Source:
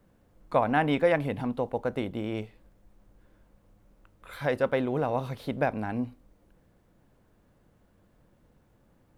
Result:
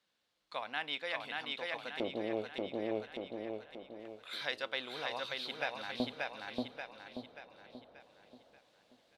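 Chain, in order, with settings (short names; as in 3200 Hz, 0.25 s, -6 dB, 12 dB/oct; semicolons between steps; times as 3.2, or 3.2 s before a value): LFO band-pass square 0.25 Hz 640–3900 Hz; feedback echo 0.583 s, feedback 44%, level -4 dB; vocal rider within 4 dB 0.5 s; gain +8 dB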